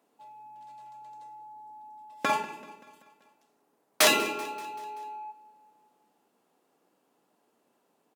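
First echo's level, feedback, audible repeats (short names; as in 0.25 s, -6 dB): -19.5 dB, 58%, 4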